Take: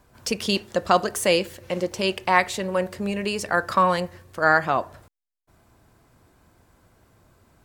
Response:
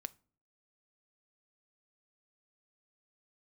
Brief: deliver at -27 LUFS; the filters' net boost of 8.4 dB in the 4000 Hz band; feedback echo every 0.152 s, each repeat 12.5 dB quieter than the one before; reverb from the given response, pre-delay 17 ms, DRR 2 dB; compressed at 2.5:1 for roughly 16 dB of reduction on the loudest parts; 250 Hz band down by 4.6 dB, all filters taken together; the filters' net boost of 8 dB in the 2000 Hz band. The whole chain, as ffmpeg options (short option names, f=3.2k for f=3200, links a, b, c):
-filter_complex "[0:a]equalizer=f=250:t=o:g=-7.5,equalizer=f=2k:t=o:g=8.5,equalizer=f=4k:t=o:g=8,acompressor=threshold=-33dB:ratio=2.5,aecho=1:1:152|304|456:0.237|0.0569|0.0137,asplit=2[a][b];[1:a]atrim=start_sample=2205,adelay=17[c];[b][c]afir=irnorm=-1:irlink=0,volume=1.5dB[d];[a][d]amix=inputs=2:normalize=0,volume=2dB"